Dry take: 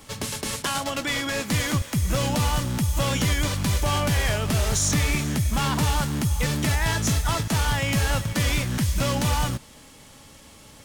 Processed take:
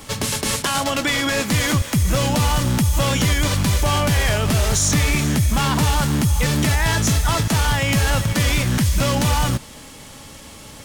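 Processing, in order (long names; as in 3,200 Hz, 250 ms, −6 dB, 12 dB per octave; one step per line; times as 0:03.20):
brickwall limiter −19 dBFS, peak gain reduction 4 dB
level +8.5 dB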